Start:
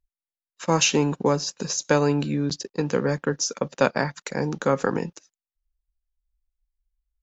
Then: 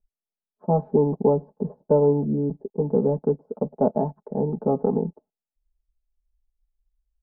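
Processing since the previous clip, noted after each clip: elliptic low-pass 800 Hz, stop band 70 dB; comb 4.7 ms, depth 100%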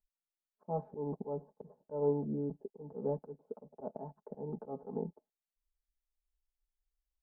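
low shelf 370 Hz -7 dB; auto swell 0.178 s; gain -7.5 dB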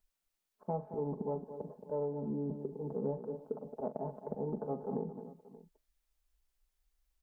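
compressor 10:1, threshold -41 dBFS, peak gain reduction 15.5 dB; on a send: tapped delay 43/223/298/581 ms -12.5/-10.5/-19/-18.5 dB; on the sum: gain +8 dB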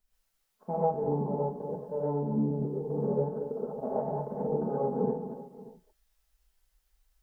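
non-linear reverb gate 0.16 s rising, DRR -7.5 dB

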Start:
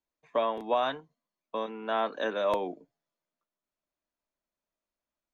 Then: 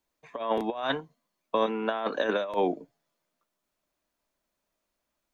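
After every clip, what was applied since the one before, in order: negative-ratio compressor -32 dBFS, ratio -0.5; gain +5.5 dB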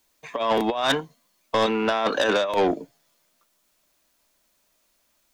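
high shelf 2200 Hz +9.5 dB; soft clip -23 dBFS, distortion -11 dB; gain +8 dB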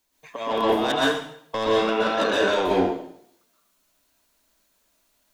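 plate-style reverb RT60 0.66 s, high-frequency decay 0.95×, pre-delay 0.11 s, DRR -5.5 dB; gain -6 dB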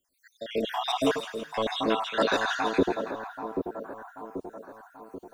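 random spectral dropouts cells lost 66%; split-band echo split 1300 Hz, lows 0.785 s, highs 0.164 s, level -7.5 dB

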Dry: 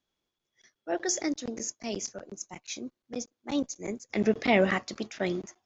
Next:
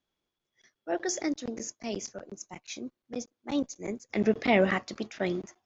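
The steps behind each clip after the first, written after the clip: high shelf 6300 Hz -8 dB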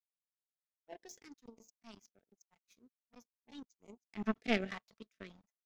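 comb 4.5 ms, depth 58%; power-law curve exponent 2; stepped notch 3.4 Hz 300–1700 Hz; gain -4 dB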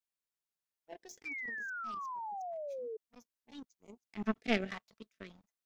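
painted sound fall, 1.25–2.97, 430–2400 Hz -42 dBFS; gain +1 dB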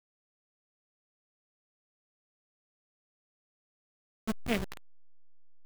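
level-crossing sampler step -30 dBFS

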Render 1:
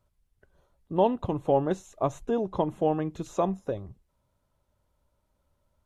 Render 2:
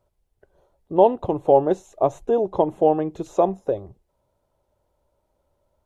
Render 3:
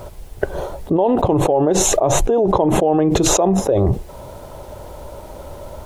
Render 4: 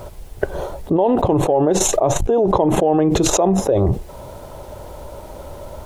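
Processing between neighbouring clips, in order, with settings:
band shelf 540 Hz +8.5 dB
fast leveller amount 100%; gain -4 dB
core saturation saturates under 150 Hz

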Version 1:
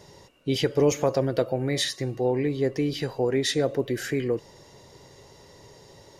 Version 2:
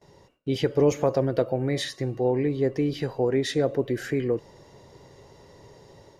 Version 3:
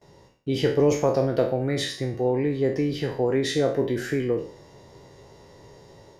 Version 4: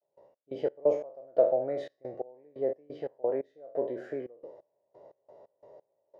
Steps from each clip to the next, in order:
high shelf 2500 Hz -8.5 dB; gate with hold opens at -43 dBFS; AGC gain up to 4 dB; gain -3 dB
spectral trails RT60 0.46 s
band-pass 610 Hz, Q 6; step gate ".x.x.x..xxx.x." 88 bpm -24 dB; gain +6 dB

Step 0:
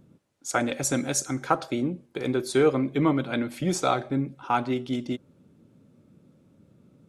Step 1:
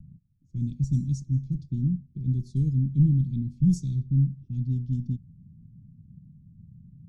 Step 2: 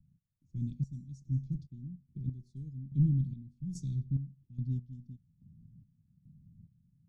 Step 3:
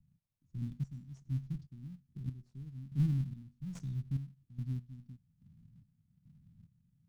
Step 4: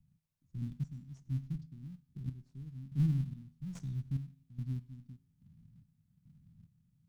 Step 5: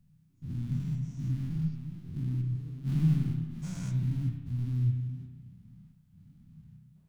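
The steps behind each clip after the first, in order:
tilt -4 dB/oct; low-pass opened by the level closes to 730 Hz, open at -13 dBFS; elliptic band-stop 170–5600 Hz, stop band 60 dB
step gate "..xx..xx..x." 72 bpm -12 dB; gain -6.5 dB
switching dead time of 0.17 ms; gain -3.5 dB
resonator 53 Hz, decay 0.87 s, harmonics odd, mix 40%; gain +4 dB
spectral dilation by 0.24 s; reverb RT60 1.2 s, pre-delay 32 ms, DRR 3 dB; flange 1.7 Hz, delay 3 ms, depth 8.9 ms, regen +69%; gain +4 dB

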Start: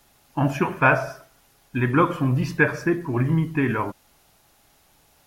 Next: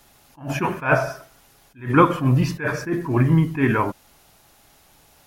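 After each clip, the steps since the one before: attack slew limiter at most 180 dB/s; gain +4.5 dB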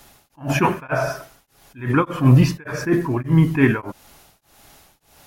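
beating tremolo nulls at 1.7 Hz; gain +6 dB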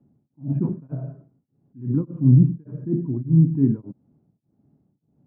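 Butterworth band-pass 180 Hz, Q 1.1

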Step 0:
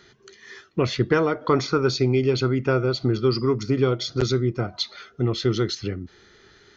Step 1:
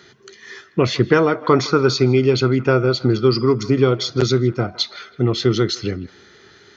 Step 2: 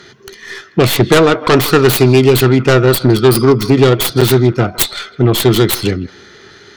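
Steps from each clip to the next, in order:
HPF 87 Hz; narrowing echo 0.161 s, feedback 46%, band-pass 1400 Hz, level -17 dB; gain +5.5 dB
tracing distortion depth 0.43 ms; dynamic EQ 3600 Hz, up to +6 dB, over -42 dBFS, Q 1.6; sine folder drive 6 dB, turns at -0.5 dBFS; gain -1.5 dB

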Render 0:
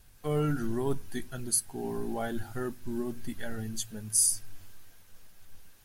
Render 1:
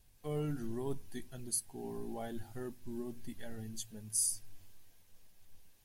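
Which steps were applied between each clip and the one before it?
bell 1400 Hz -8.5 dB 0.5 oct; gain -8 dB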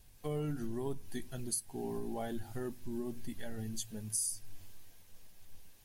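compressor 3:1, threshold -40 dBFS, peak gain reduction 9 dB; gain +5.5 dB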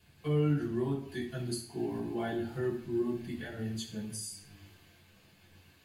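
reverb RT60 0.60 s, pre-delay 3 ms, DRR -5.5 dB; gain -9 dB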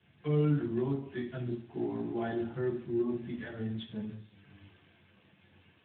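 Speex 11 kbps 8000 Hz

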